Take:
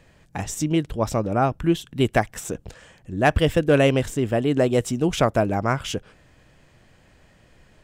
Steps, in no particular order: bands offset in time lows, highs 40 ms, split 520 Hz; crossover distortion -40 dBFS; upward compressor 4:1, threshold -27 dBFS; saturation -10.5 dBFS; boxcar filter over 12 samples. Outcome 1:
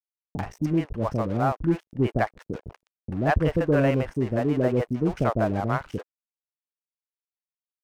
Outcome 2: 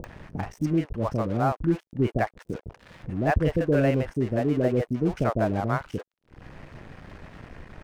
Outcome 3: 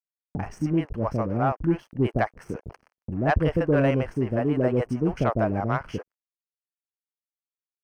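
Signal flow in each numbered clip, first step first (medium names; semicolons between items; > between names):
boxcar filter > crossover distortion > upward compressor > bands offset in time > saturation; saturation > boxcar filter > upward compressor > crossover distortion > bands offset in time; crossover distortion > bands offset in time > upward compressor > boxcar filter > saturation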